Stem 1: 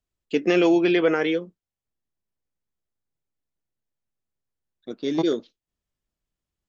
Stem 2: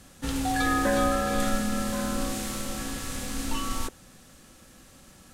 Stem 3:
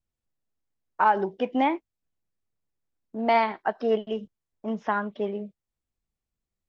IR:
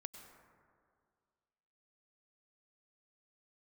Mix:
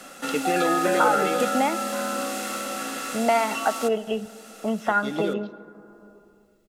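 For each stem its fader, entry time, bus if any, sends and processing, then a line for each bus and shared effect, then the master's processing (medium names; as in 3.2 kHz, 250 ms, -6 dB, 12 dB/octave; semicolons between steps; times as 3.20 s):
-7.0 dB, 0.00 s, send -5 dB, low-pass that closes with the level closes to 2 kHz, closed at -16 dBFS
+0.5 dB, 0.00 s, no send, high-pass 250 Hz 24 dB/octave
+1.5 dB, 0.00 s, send -6.5 dB, compression 2:1, threshold -24 dBFS, peak gain reduction 5.5 dB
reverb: on, RT60 2.1 s, pre-delay 88 ms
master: comb 1.5 ms, depth 37%; small resonant body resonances 1.4/2.7 kHz, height 9 dB, ringing for 35 ms; three bands compressed up and down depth 40%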